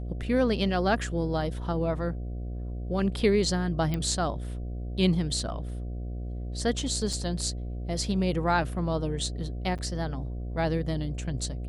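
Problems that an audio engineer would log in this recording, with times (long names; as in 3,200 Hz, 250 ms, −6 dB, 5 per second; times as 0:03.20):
mains buzz 60 Hz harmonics 12 −34 dBFS
0:03.94: click −18 dBFS
0:07.13: drop-out 3.4 ms
0:09.78–0:09.79: drop-out 7.4 ms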